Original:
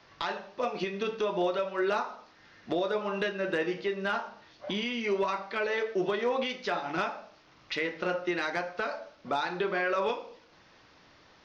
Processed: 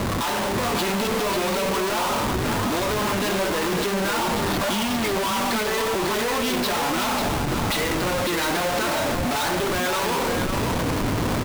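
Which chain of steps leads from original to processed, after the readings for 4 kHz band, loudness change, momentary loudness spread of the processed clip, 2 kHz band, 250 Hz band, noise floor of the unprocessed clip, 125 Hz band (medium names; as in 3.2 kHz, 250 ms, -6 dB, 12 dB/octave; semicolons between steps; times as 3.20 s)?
+13.0 dB, +8.5 dB, 1 LU, +7.5 dB, +11.0 dB, -59 dBFS, +18.0 dB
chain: single-diode clipper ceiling -31.5 dBFS; fifteen-band graphic EQ 100 Hz +10 dB, 250 Hz +11 dB, 1 kHz +10 dB, 4 kHz +10 dB; in parallel at +1 dB: compression, threshold -37 dBFS, peak gain reduction 14 dB; on the sum: waveshaping leveller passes 1; Schmitt trigger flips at -40 dBFS; on a send: delay 547 ms -5.5 dB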